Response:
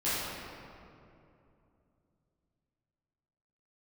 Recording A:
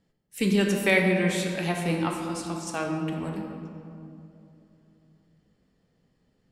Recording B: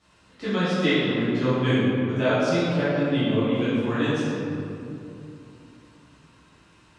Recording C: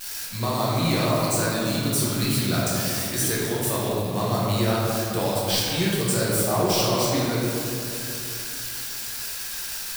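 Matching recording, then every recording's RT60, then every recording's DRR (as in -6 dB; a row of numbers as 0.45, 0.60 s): B; 2.8, 2.7, 2.7 s; 1.0, -13.0, -7.0 dB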